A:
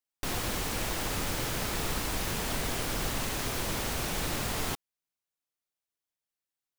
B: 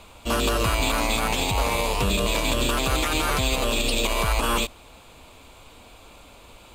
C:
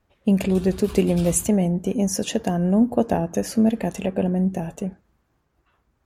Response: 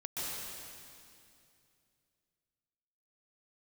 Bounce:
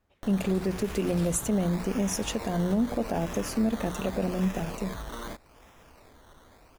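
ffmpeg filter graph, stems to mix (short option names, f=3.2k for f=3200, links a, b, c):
-filter_complex "[0:a]volume=-3dB[a];[1:a]dynaudnorm=f=310:g=7:m=9dB,adelay=700,volume=-14.5dB[b];[2:a]bandreject=f=45.08:t=h:w=4,bandreject=f=90.16:t=h:w=4,bandreject=f=135.24:t=h:w=4,bandreject=f=180.32:t=h:w=4,volume=-4.5dB[c];[a][b]amix=inputs=2:normalize=0,acrusher=samples=14:mix=1:aa=0.000001:lfo=1:lforange=8.4:lforate=0.83,acompressor=threshold=-39dB:ratio=2.5,volume=0dB[d];[c][d]amix=inputs=2:normalize=0,alimiter=limit=-18dB:level=0:latency=1:release=68"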